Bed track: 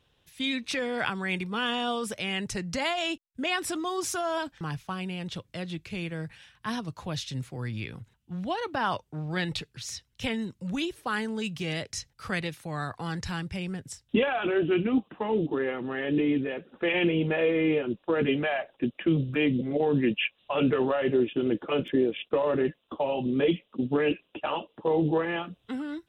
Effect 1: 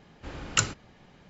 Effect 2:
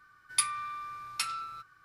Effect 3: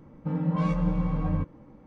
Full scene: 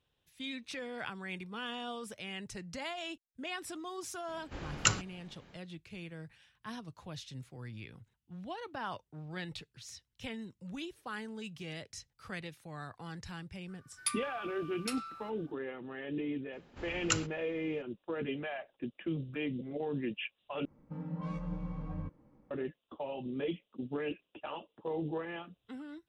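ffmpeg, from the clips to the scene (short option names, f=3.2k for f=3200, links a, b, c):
-filter_complex "[1:a]asplit=2[a][b];[0:a]volume=-11.5dB[c];[2:a]bandreject=f=1k:w=12[d];[c]asplit=2[e][f];[e]atrim=end=20.654[g];[3:a]atrim=end=1.86,asetpts=PTS-STARTPTS,volume=-13dB[h];[f]atrim=start=22.506[i];[a]atrim=end=1.29,asetpts=PTS-STARTPTS,volume=-3dB,afade=t=in:d=0.004:c=hsin,afade=t=out:st=1.286:d=0.004:c=hsin,adelay=4280[j];[d]atrim=end=1.84,asetpts=PTS-STARTPTS,volume=-7dB,afade=t=in:d=0.004:c=hsin,afade=t=out:st=1.836:d=0.004:c=hsin,adelay=13680[k];[b]atrim=end=1.29,asetpts=PTS-STARTPTS,volume=-7dB,afade=t=in:d=0.004:c=hsin,afade=t=out:st=1.286:d=0.004:c=hsin,adelay=16530[l];[g][h]acrossfade=d=0.004:c1=hsin:c2=hsin[m];[m][i]acrossfade=d=0.004:c1=hsin:c2=hsin[n];[n][j][k][l]amix=inputs=4:normalize=0"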